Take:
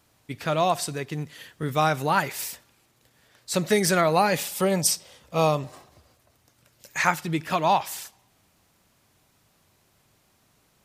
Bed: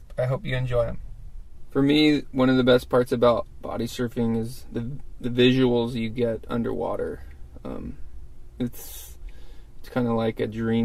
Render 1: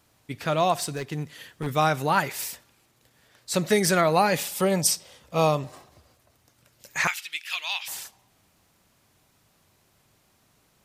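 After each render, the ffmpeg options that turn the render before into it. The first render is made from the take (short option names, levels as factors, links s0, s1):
-filter_complex "[0:a]asettb=1/sr,asplit=3[s0][s1][s2];[s0]atrim=end=0.784[s3];[s1]atrim=start=0.78:end=1.67,asetpts=PTS-STARTPTS,afade=t=in:d=0.004:c=qsin,afade=t=out:st=0.886:d=0.004:c=qsin,aeval=exprs='0.0794*(abs(mod(val(0)/0.0794+3,4)-2)-1)':c=same[s4];[s2]atrim=start=1.666[s5];[s3][s4]acrossfade=d=0.004:c1=hsin:c2=qsin[s6];[s6][s5]acrossfade=d=0.004:c1=qsin:c2=hsin,asettb=1/sr,asplit=3[s7][s8][s9];[s7]atrim=end=7.074[s10];[s8]atrim=start=7.07:end=7.88,asetpts=PTS-STARTPTS,afade=t=in:d=0.004:c=qsin,afade=t=out:st=0.806:d=0.004:c=qsin,highpass=f=2700:t=q:w=2.2[s11];[s9]atrim=start=7.876[s12];[s10][s11]acrossfade=d=0.004:c1=hsin:c2=qsin[s13];[s13][s12]acrossfade=d=0.004:c1=qsin:c2=hsin"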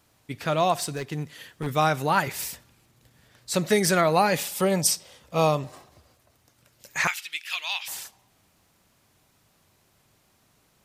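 -filter_complex "[0:a]asettb=1/sr,asplit=3[s0][s1][s2];[s0]atrim=end=2.274[s3];[s1]atrim=start=2.27:end=3.51,asetpts=PTS-STARTPTS,afade=t=in:d=0.004:c=qsin,afade=t=out:st=1.236:d=0.004:c=qsin,bass=f=250:g=8,treble=f=4000:g=0[s4];[s2]atrim=start=3.506[s5];[s3][s4]acrossfade=d=0.004:c1=hsin:c2=qsin[s6];[s6][s5]acrossfade=d=0.004:c1=qsin:c2=hsin"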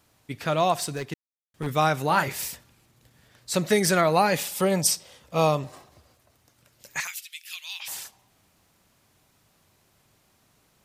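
-filter_complex "[0:a]asettb=1/sr,asplit=3[s0][s1][s2];[s0]atrim=end=2.074[s3];[s1]atrim=start=2.07:end=2.48,asetpts=PTS-STARTPTS,afade=t=in:d=0.004:c=qsin,afade=t=out:st=0.406:d=0.004:c=qsin,asplit=2[s4][s5];[s5]adelay=29,volume=0.355[s6];[s4][s6]amix=inputs=2:normalize=0,atrim=end_sample=18081[s7];[s2]atrim=start=2.476[s8];[s3][s7]acrossfade=d=0.004:c1=hsin:c2=qsin[s9];[s9][s8]acrossfade=d=0.004:c1=qsin:c2=hsin,asettb=1/sr,asplit=3[s10][s11][s12];[s10]atrim=end=7.004[s13];[s11]atrim=start=7:end=7.8,asetpts=PTS-STARTPTS,afade=t=in:d=0.004:c=qsin,afade=t=out:st=0.796:d=0.004:c=qsin,aderivative[s14];[s12]atrim=start=7.796[s15];[s13][s14]acrossfade=d=0.004:c1=hsin:c2=qsin[s16];[s16][s15]acrossfade=d=0.004:c1=qsin:c2=hsin,asplit=3[s17][s18][s19];[s17]atrim=end=1.14,asetpts=PTS-STARTPTS,afade=t=out:st=1.136:d=0.004:c=hsin[s20];[s18]atrim=start=1.14:end=1.54,asetpts=PTS-STARTPTS,volume=0[s21];[s19]atrim=start=1.54,asetpts=PTS-STARTPTS,afade=t=in:d=0.004:c=hsin[s22];[s20][s21][s22]concat=n=3:v=0:a=1"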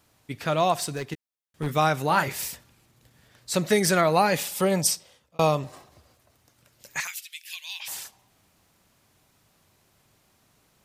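-filter_complex "[0:a]asettb=1/sr,asplit=3[s0][s1][s2];[s0]atrim=end=1.124[s3];[s1]atrim=start=1.12:end=1.78,asetpts=PTS-STARTPTS,afade=t=in:d=0.004:c=qsin,afade=t=out:st=0.656:d=0.004:c=qsin,asplit=2[s4][s5];[s5]adelay=13,volume=0.355[s6];[s4][s6]amix=inputs=2:normalize=0,atrim=end_sample=29106[s7];[s2]atrim=start=1.776[s8];[s3][s7]acrossfade=d=0.004:c1=hsin:c2=qsin[s9];[s9][s8]acrossfade=d=0.004:c1=qsin:c2=hsin,asettb=1/sr,asplit=3[s10][s11][s12];[s10]atrim=end=7.384[s13];[s11]atrim=start=7.38:end=7.82,asetpts=PTS-STARTPTS,afade=t=in:d=0.004:c=qsin,afade=t=out:st=0.436:d=0.004:c=qsin,asuperstop=centerf=1300:order=12:qfactor=4.4[s14];[s12]atrim=start=7.816[s15];[s13][s14]acrossfade=d=0.004:c1=hsin:c2=qsin[s16];[s16][s15]acrossfade=d=0.004:c1=qsin:c2=hsin,asplit=2[s17][s18];[s17]atrim=end=5.39,asetpts=PTS-STARTPTS,afade=t=out:st=4.82:d=0.57[s19];[s18]atrim=start=5.39,asetpts=PTS-STARTPTS,afade=t=in:d=0.004:c=hsin[s20];[s19][s20]concat=n=2:v=0:a=1"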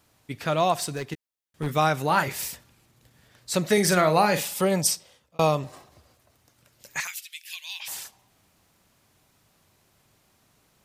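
-filter_complex "[0:a]asettb=1/sr,asplit=3[s0][s1][s2];[s0]atrim=end=3.734[s3];[s1]atrim=start=3.73:end=4.54,asetpts=PTS-STARTPTS,afade=t=in:d=0.004:c=qsin,afade=t=out:st=0.806:d=0.004:c=qsin,asplit=2[s4][s5];[s5]adelay=44,volume=0.355[s6];[s4][s6]amix=inputs=2:normalize=0,atrim=end_sample=35721[s7];[s2]atrim=start=4.536[s8];[s3][s7]acrossfade=d=0.004:c1=hsin:c2=qsin[s9];[s9][s8]acrossfade=d=0.004:c1=qsin:c2=hsin"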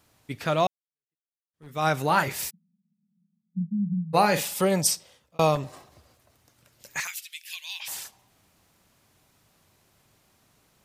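-filter_complex "[0:a]asplit=3[s0][s1][s2];[s0]afade=t=out:st=2.49:d=0.02[s3];[s1]asuperpass=centerf=190:order=8:qfactor=3.3,afade=t=in:st=2.49:d=0.02,afade=t=out:st=4.13:d=0.02[s4];[s2]afade=t=in:st=4.13:d=0.02[s5];[s3][s4][s5]amix=inputs=3:normalize=0,asettb=1/sr,asplit=3[s6][s7][s8];[s6]atrim=end=5.554[s9];[s7]atrim=start=5.55:end=7.67,asetpts=PTS-STARTPTS,afade=t=in:d=0.004:c=qsin,afade=t=out:st=2.116:d=0.004:c=qsin,asoftclip=type=hard:threshold=0.0708[s10];[s8]atrim=start=7.666[s11];[s9][s10]acrossfade=d=0.004:c1=hsin:c2=qsin[s12];[s12][s11]acrossfade=d=0.004:c1=qsin:c2=hsin,asplit=2[s13][s14];[s13]atrim=end=0.67,asetpts=PTS-STARTPTS,afade=t=out:st=0.666:d=0.004:c=hsin[s15];[s14]atrim=start=0.67,asetpts=PTS-STARTPTS,afade=t=in:d=1.21:c=exp[s16];[s15][s16]concat=n=2:v=0:a=1"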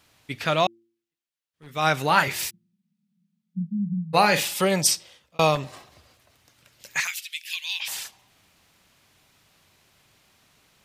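-af "equalizer=f=2900:w=0.6:g=7.5,bandreject=f=114.1:t=h:w=4,bandreject=f=228.2:t=h:w=4,bandreject=f=342.3:t=h:w=4"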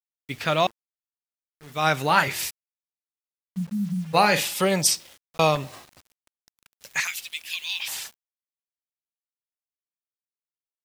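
-af "acrusher=bits=7:mix=0:aa=0.000001"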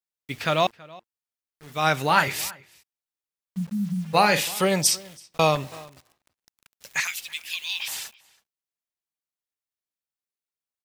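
-filter_complex "[0:a]asplit=2[s0][s1];[s1]adelay=326.5,volume=0.0794,highshelf=f=4000:g=-7.35[s2];[s0][s2]amix=inputs=2:normalize=0"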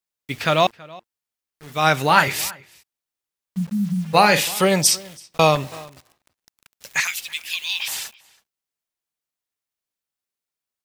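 -af "volume=1.68,alimiter=limit=0.891:level=0:latency=1"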